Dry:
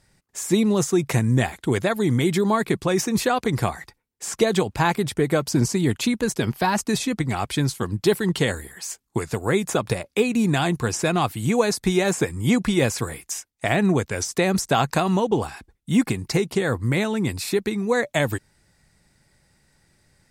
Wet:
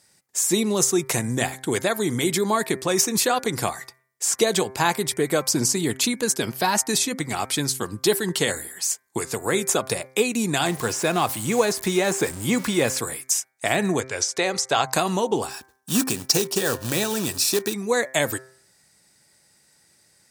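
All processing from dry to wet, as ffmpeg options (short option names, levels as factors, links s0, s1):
-filter_complex "[0:a]asettb=1/sr,asplit=3[s0][s1][s2];[s0]atrim=end=10.664[s3];[s1]atrim=start=10.66:end=12.97,asetpts=PTS-STARTPTS,afade=t=in:d=0.004:c=qsin,afade=t=out:st=2.306:d=0.004:c=qsin,aeval=exprs='val(0)+0.5*0.0266*sgn(val(0))':c=same,acrossover=split=2800[s4][s5];[s5]acompressor=threshold=0.02:ratio=4:attack=1:release=60[s6];[s4][s6]amix=inputs=2:normalize=0[s7];[s2]atrim=start=12.966[s8];[s3][s7]acrossfade=d=0.004:c1=hsin:c2=qsin[s9];[s9][s8]acrossfade=d=0.004:c1=qsin:c2=hsin,asettb=1/sr,asplit=3[s10][s11][s12];[s10]atrim=end=14.004[s13];[s11]atrim=start=14:end=14.93,asetpts=PTS-STARTPTS,afade=t=in:d=0.004:c=qsin,afade=t=out:st=0.926:d=0.004:c=qsin,lowpass=6000,equalizer=f=210:t=o:w=0.85:g=-10.5[s14];[s12]atrim=start=14.926[s15];[s13][s14]acrossfade=d=0.004:c1=hsin:c2=qsin[s16];[s16][s15]acrossfade=d=0.004:c1=qsin:c2=hsin,asettb=1/sr,asplit=3[s17][s18][s19];[s17]atrim=end=15.504[s20];[s18]atrim=start=15.5:end=17.74,asetpts=PTS-STARTPTS,afade=t=in:d=0.004:c=qsin,afade=t=out:st=2.236:d=0.004:c=qsin,equalizer=f=5600:w=5.2:g=8,acrusher=bits=3:mode=log:mix=0:aa=0.000001,asuperstop=centerf=2100:order=4:qfactor=7[s21];[s19]atrim=start=17.736[s22];[s20][s21]acrossfade=d=0.004:c1=hsin:c2=qsin[s23];[s23][s22]acrossfade=d=0.004:c1=qsin:c2=hsin,highpass=93,bass=f=250:g=-7,treble=f=4000:g=9,bandreject=f=130.8:t=h:w=4,bandreject=f=261.6:t=h:w=4,bandreject=f=392.4:t=h:w=4,bandreject=f=523.2:t=h:w=4,bandreject=f=654:t=h:w=4,bandreject=f=784.8:t=h:w=4,bandreject=f=915.6:t=h:w=4,bandreject=f=1046.4:t=h:w=4,bandreject=f=1177.2:t=h:w=4,bandreject=f=1308:t=h:w=4,bandreject=f=1438.8:t=h:w=4,bandreject=f=1569.6:t=h:w=4,bandreject=f=1700.4:t=h:w=4,bandreject=f=1831.2:t=h:w=4,bandreject=f=1962:t=h:w=4,bandreject=f=2092.8:t=h:w=4,bandreject=f=2223.6:t=h:w=4,bandreject=f=2354.4:t=h:w=4"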